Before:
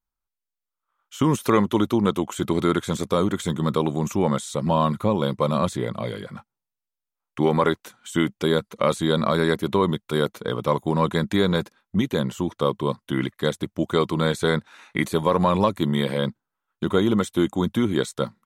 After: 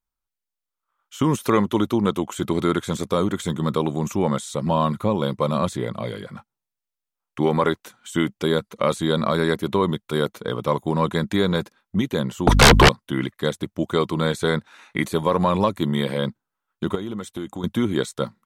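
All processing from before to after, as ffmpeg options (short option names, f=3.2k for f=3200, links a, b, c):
-filter_complex "[0:a]asettb=1/sr,asplit=3[a][b][c];[a]atrim=end=12.474[d];[b]atrim=start=12.47:end=12.89,asetpts=PTS-STARTPTS,afade=t=in:d=0.004:c=qsin,afade=t=out:st=0.416:d=0.004:c=qsin,aeval=exprs='val(0)+0.0126*(sin(2*PI*50*n/s)+sin(2*PI*2*50*n/s)/2+sin(2*PI*3*50*n/s)/3+sin(2*PI*4*50*n/s)/4+sin(2*PI*5*50*n/s)/5)':c=same,aeval=exprs='0.473*sin(PI/2*10*val(0)/0.473)':c=same[e];[c]atrim=start=12.886[f];[d][e]acrossfade=d=0.004:c1=hsin:c2=qsin[g];[g][f]acrossfade=d=0.004:c1=qsin:c2=hsin,asettb=1/sr,asplit=3[h][i][j];[h]atrim=end=16.954[k];[i]atrim=start=16.95:end=17.64,asetpts=PTS-STARTPTS,afade=t=in:d=0.004:c=qsin,afade=t=out:st=0.686:d=0.004:c=qsin,bandreject=f=630:w=11,agate=range=-33dB:threshold=-42dB:ratio=3:release=100:detection=peak,acompressor=threshold=-29dB:ratio=3:attack=3.2:release=140:knee=1:detection=peak[l];[j]atrim=start=17.636[m];[k][l]acrossfade=d=0.004:c1=hsin:c2=qsin[n];[n][m]acrossfade=d=0.004:c1=qsin:c2=hsin"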